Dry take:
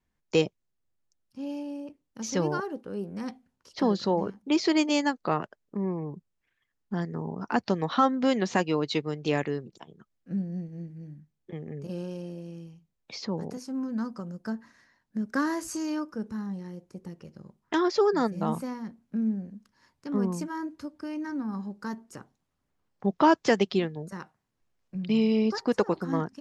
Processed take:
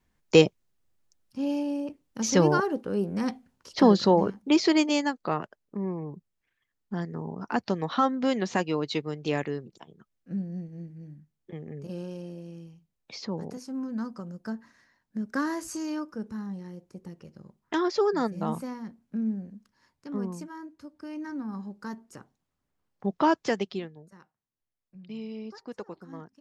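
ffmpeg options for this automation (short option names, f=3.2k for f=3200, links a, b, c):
-af "volume=13dB,afade=t=out:st=3.9:d=1.18:silence=0.398107,afade=t=out:st=19.53:d=1.21:silence=0.421697,afade=t=in:st=20.74:d=0.46:silence=0.473151,afade=t=out:st=23.29:d=0.78:silence=0.251189"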